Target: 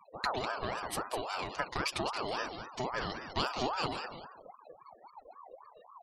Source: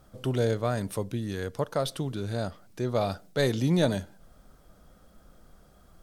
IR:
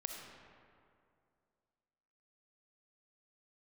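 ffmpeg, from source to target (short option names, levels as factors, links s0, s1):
-filter_complex "[0:a]acompressor=threshold=0.0251:ratio=8,equalizer=f=3700:t=o:w=1.8:g=10.5,aecho=1:1:7.3:0.75,asplit=5[s0][s1][s2][s3][s4];[s1]adelay=199,afreqshift=70,volume=0.398[s5];[s2]adelay=398,afreqshift=140,volume=0.119[s6];[s3]adelay=597,afreqshift=210,volume=0.0359[s7];[s4]adelay=796,afreqshift=280,volume=0.0107[s8];[s0][s5][s6][s7][s8]amix=inputs=5:normalize=0,afftfilt=real='re*gte(hypot(re,im),0.00708)':imag='im*gte(hypot(re,im),0.00708)':win_size=1024:overlap=0.75,aeval=exprs='val(0)*sin(2*PI*820*n/s+820*0.4/3.7*sin(2*PI*3.7*n/s))':c=same"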